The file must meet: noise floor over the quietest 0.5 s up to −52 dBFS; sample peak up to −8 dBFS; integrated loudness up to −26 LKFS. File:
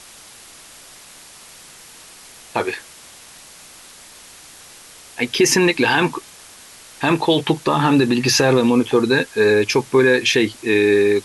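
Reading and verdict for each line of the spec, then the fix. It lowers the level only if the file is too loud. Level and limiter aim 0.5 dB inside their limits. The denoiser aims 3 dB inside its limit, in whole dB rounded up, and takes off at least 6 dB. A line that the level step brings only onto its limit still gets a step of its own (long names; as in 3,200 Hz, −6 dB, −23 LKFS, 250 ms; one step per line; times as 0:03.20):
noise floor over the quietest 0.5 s −43 dBFS: out of spec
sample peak −5.5 dBFS: out of spec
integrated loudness −17.0 LKFS: out of spec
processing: level −9.5 dB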